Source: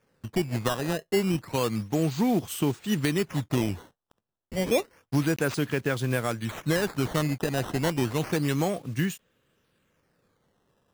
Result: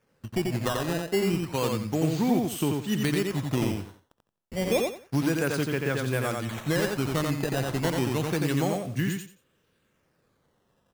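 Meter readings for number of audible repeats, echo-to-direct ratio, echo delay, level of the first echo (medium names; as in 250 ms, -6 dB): 3, -3.5 dB, 88 ms, -3.5 dB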